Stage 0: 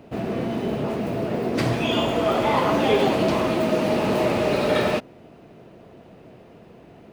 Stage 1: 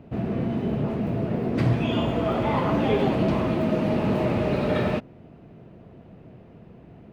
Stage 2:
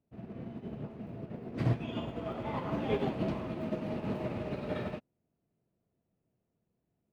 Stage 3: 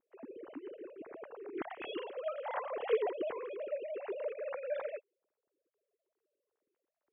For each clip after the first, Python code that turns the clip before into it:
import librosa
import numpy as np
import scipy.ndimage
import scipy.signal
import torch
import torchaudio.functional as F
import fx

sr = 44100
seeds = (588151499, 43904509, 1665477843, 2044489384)

y1 = fx.bass_treble(x, sr, bass_db=10, treble_db=-10)
y1 = F.gain(torch.from_numpy(y1), -5.0).numpy()
y2 = fx.upward_expand(y1, sr, threshold_db=-37.0, expansion=2.5)
y2 = F.gain(torch.from_numpy(y2), -5.5).numpy()
y3 = fx.sine_speech(y2, sr)
y3 = F.gain(torch.from_numpy(y3), -3.5).numpy()